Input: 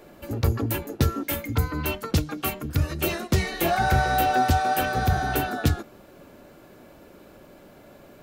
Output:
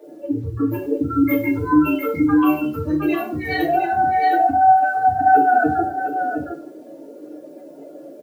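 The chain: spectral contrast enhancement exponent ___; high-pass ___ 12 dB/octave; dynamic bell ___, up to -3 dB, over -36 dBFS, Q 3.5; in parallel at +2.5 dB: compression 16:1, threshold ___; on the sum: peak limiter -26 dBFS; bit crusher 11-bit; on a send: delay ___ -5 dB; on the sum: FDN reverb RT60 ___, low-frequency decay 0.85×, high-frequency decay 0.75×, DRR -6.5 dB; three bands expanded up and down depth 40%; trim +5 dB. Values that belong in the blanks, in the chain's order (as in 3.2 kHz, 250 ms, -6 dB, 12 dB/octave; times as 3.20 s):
2.9, 400 Hz, 900 Hz, -39 dBFS, 712 ms, 0.4 s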